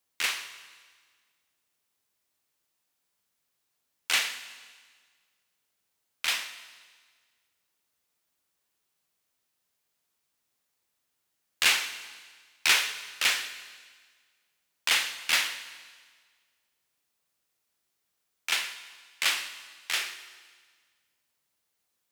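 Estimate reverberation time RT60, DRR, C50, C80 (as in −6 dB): 1.6 s, 9.5 dB, 11.0 dB, 12.5 dB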